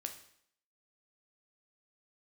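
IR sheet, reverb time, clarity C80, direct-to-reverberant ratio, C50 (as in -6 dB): 0.65 s, 13.5 dB, 5.0 dB, 10.0 dB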